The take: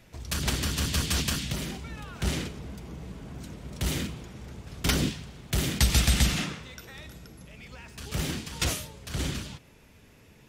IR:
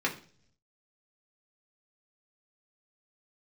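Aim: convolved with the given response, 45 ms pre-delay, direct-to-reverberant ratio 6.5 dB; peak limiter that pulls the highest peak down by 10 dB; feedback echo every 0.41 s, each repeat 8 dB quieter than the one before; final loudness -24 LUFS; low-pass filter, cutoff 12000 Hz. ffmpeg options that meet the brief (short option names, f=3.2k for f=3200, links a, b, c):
-filter_complex "[0:a]lowpass=12k,alimiter=limit=-19.5dB:level=0:latency=1,aecho=1:1:410|820|1230|1640|2050:0.398|0.159|0.0637|0.0255|0.0102,asplit=2[a][b];[1:a]atrim=start_sample=2205,adelay=45[c];[b][c]afir=irnorm=-1:irlink=0,volume=-15.5dB[d];[a][d]amix=inputs=2:normalize=0,volume=7.5dB"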